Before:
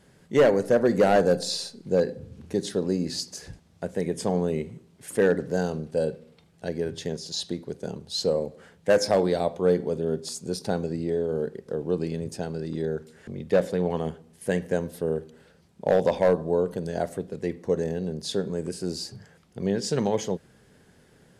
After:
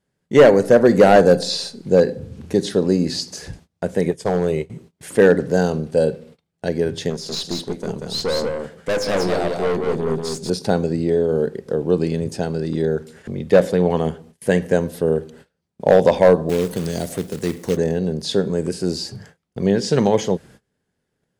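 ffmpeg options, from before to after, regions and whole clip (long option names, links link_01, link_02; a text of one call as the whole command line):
ffmpeg -i in.wav -filter_complex "[0:a]asettb=1/sr,asplit=3[link_01][link_02][link_03];[link_01]atrim=end=4.114[link_04];[link_02]atrim=start=4.11:end=4.7,asetpts=PTS-STARTPTS,afade=type=in:duration=0.004:curve=qsin,afade=type=out:start_time=0.586:duration=0.004:curve=qsin,agate=range=-33dB:threshold=-28dB:ratio=3:release=100:detection=peak,equalizer=frequency=230:width=2.9:gain=-11.5,asoftclip=type=hard:threshold=-19.5dB[link_05];[link_03]atrim=start=4.696[link_06];[link_04][link_05]acrossfade=duration=0.004:curve1=hsin:curve2=qsin[link_07];[link_07][link_06]acrossfade=duration=0.004:curve1=qsin:curve2=hsin,asettb=1/sr,asplit=3[link_08][link_09][link_10];[link_08]atrim=end=7.104[link_11];[link_09]atrim=start=7.1:end=10.5,asetpts=PTS-STARTPTS,afade=type=in:duration=0.004:curve=qsin,afade=type=out:start_time=3.396:duration=0.004:curve=qsin,aeval=exprs='(tanh(20*val(0)+0.35)-tanh(0.35))/20':channel_layout=same,aecho=1:1:186:0.631,atrim=end_sample=149940[link_12];[link_10]atrim=start=10.496[link_13];[link_11][link_12]acrossfade=duration=0.004:curve1=hsin:curve2=qsin[link_14];[link_14][link_13]acrossfade=duration=0.004:curve1=qsin:curve2=hsin,asettb=1/sr,asplit=3[link_15][link_16][link_17];[link_15]atrim=end=16.494[link_18];[link_16]atrim=start=16.49:end=17.77,asetpts=PTS-STARTPTS,afade=type=in:duration=0.004:curve=qsin,afade=type=out:start_time=1.276:duration=0.004:curve=qsin,aemphasis=mode=production:type=75kf,acrossover=split=400|3000[link_19][link_20][link_21];[link_20]acompressor=threshold=-40dB:ratio=5:attack=3.2:release=140:knee=2.83:detection=peak[link_22];[link_19][link_22][link_21]amix=inputs=3:normalize=0,acrusher=bits=3:mode=log:mix=0:aa=0.000001[link_23];[link_17]atrim=start=17.766[link_24];[link_18][link_23]acrossfade=duration=0.004:curve1=hsin:curve2=qsin[link_25];[link_25][link_24]acrossfade=duration=0.004:curve1=qsin:curve2=hsin,agate=range=-26dB:threshold=-51dB:ratio=16:detection=peak,acrossover=split=5400[link_26][link_27];[link_27]acompressor=threshold=-43dB:ratio=4:attack=1:release=60[link_28];[link_26][link_28]amix=inputs=2:normalize=0,volume=8.5dB" out.wav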